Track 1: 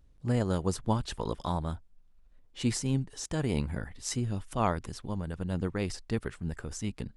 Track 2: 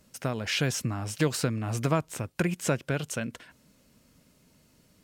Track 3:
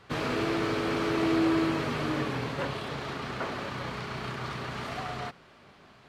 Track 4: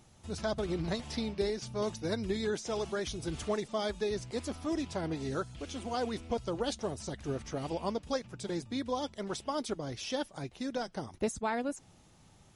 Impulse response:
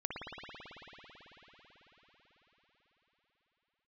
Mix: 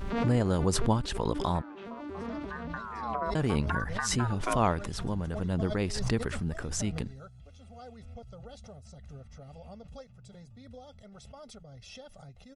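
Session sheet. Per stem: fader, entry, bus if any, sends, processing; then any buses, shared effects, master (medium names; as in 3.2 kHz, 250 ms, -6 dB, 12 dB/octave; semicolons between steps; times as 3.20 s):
+1.5 dB, 0.00 s, muted 1.62–3.35 s, no send, none
2.38 s -16 dB -> 3.07 s -3.5 dB, 1.30 s, no send, low-pass that closes with the level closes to 450 Hz, closed at -24 dBFS; treble shelf 5.4 kHz -11 dB; ring modulator with a swept carrier 1.1 kHz, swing 25%, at 0.76 Hz
-5.5 dB, 0.00 s, no send, vocoder on a broken chord minor triad, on G3, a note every 116 ms; auto duck -17 dB, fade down 0.85 s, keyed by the first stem
-19.5 dB, 1.85 s, no send, bass shelf 260 Hz +11 dB; comb 1.5 ms, depth 94%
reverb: none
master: treble shelf 6.3 kHz -4.5 dB; swell ahead of each attack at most 41 dB/s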